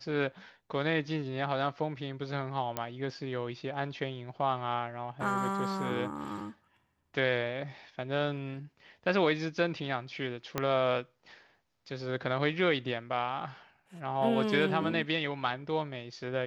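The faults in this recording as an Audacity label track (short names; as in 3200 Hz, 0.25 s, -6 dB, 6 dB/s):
2.770000	2.770000	pop -16 dBFS
10.580000	10.580000	pop -14 dBFS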